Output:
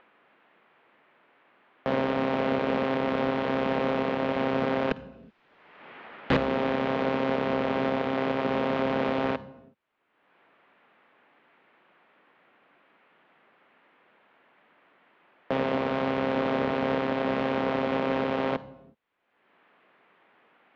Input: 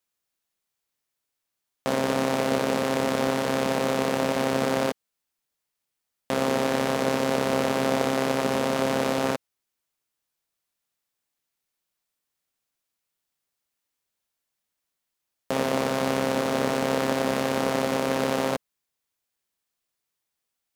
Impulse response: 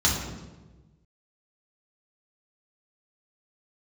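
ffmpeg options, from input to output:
-filter_complex "[0:a]acrossover=split=180|2500[a][b][c];[b]acompressor=mode=upward:threshold=-38dB:ratio=2.5[d];[a][d][c]amix=inputs=3:normalize=0,asettb=1/sr,asplit=3[e][f][g];[e]atrim=end=4.914[h];[f]atrim=start=4.91:end=6.37,asetpts=PTS-STARTPTS,afade=t=in:d=0.004:c=qsin,afade=t=out:st=1.456:d=0.004:c=qsin,aeval=exprs='0.251*sin(PI/2*4.47*val(0)/0.251)':c=same[i];[g]atrim=start=6.366[j];[h][i]acrossfade=d=0.004:c1=hsin:c2=qsin[k];[k][j]acrossfade=d=0.004:c1=qsin:c2=hsin,asplit=2[l][m];[1:a]atrim=start_sample=2205,afade=t=out:st=0.38:d=0.01,atrim=end_sample=17199,adelay=50[n];[m][n]afir=irnorm=-1:irlink=0,volume=-32dB[o];[l][o]amix=inputs=2:normalize=0,alimiter=limit=-14.5dB:level=0:latency=1:release=487,asoftclip=type=hard:threshold=-18dB,lowpass=f=3.3k:w=0.5412,lowpass=f=3.3k:w=1.3066"

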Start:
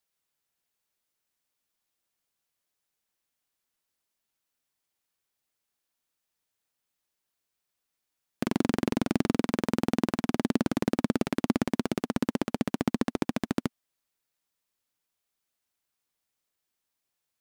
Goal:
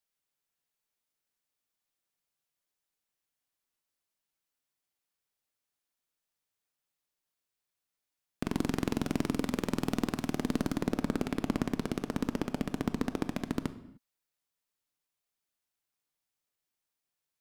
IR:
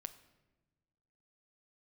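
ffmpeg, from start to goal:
-filter_complex "[0:a]asettb=1/sr,asplit=3[a][b][c];[a]atrim=end=8.544[d];[b]atrim=start=8.54:end=10.73,asetpts=PTS-STARTPTS,afade=t=in:d=0.004:c=qsin,afade=t=out:st=2.186:d=0.004:c=qsin,highshelf=f=5k:g=5.5[e];[c]atrim=start=10.726[f];[d][e]acrossfade=d=0.004:c1=hsin:c2=qsin[g];[g][f]acrossfade=d=0.004:c1=qsin:c2=hsin,aeval=exprs='0.398*(cos(1*acos(clip(val(0)/0.398,-1,1)))-cos(1*PI/2))+0.0158*(cos(8*acos(clip(val(0)/0.398,-1,1)))-cos(8*PI/2))':c=same[h];[1:a]atrim=start_sample=2205,afade=t=out:st=0.36:d=0.01,atrim=end_sample=16317[i];[h][i]afir=irnorm=-1:irlink=0"

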